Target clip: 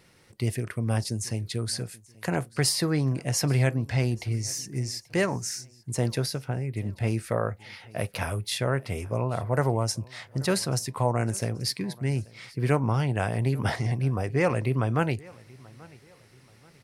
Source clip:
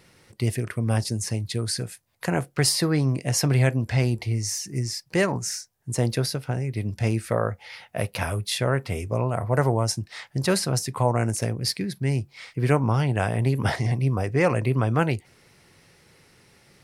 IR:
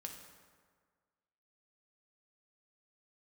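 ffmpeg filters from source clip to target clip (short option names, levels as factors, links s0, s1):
-filter_complex "[0:a]asettb=1/sr,asplit=3[s0][s1][s2];[s0]atrim=end=6.454[s3];[s1]atrim=start=6.45:end=7.08,asetpts=PTS-STARTPTS,afade=t=in:d=0.004:c=qsin,afade=t=out:st=0.626:d=0.004:c=qsin,equalizer=f=6000:w=2.1:g=-13[s4];[s2]atrim=start=7.076[s5];[s3][s4]acrossfade=d=0.004:c1=hsin:c2=qsin[s6];[s6][s5]acrossfade=d=0.004:c1=qsin:c2=hsin,aecho=1:1:833|1666:0.0668|0.0241,volume=0.708"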